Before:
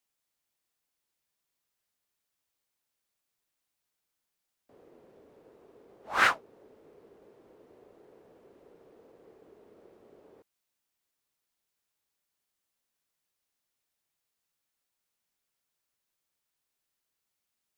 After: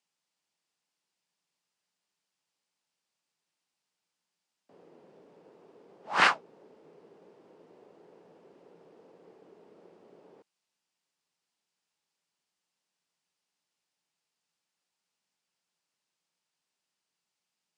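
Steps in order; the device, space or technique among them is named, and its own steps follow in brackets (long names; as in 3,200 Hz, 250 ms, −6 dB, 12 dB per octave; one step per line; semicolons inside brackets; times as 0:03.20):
full-range speaker at full volume (highs frequency-modulated by the lows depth 0.43 ms; loudspeaker in its box 160–9,000 Hz, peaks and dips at 170 Hz +9 dB, 880 Hz +4 dB, 2,800 Hz +3 dB, 4,900 Hz +4 dB)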